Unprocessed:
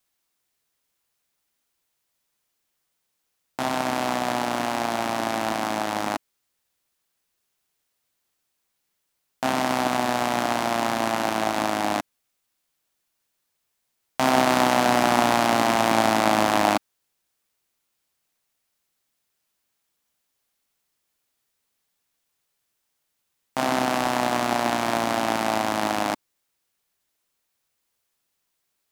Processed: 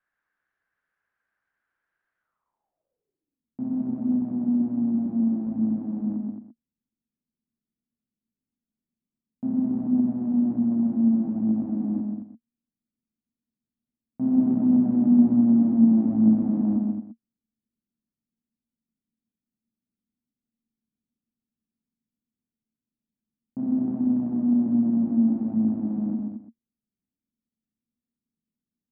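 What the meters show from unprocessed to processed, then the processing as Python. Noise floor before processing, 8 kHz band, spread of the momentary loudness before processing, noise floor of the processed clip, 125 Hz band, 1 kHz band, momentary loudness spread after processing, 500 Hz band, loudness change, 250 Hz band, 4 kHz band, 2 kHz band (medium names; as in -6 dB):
-77 dBFS, under -40 dB, 8 LU, under -85 dBFS, +2.5 dB, under -25 dB, 12 LU, -16.5 dB, 0.0 dB, +8.5 dB, under -40 dB, under -35 dB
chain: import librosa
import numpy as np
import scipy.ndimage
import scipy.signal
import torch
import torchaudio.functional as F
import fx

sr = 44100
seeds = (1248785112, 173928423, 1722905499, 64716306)

p1 = x + fx.echo_multitap(x, sr, ms=(128, 219, 343), db=(-4.0, -7.0, -16.5), dry=0)
p2 = fx.filter_sweep_lowpass(p1, sr, from_hz=1600.0, to_hz=230.0, start_s=2.19, end_s=3.46, q=7.7)
y = F.gain(torch.from_numpy(p2), -7.0).numpy()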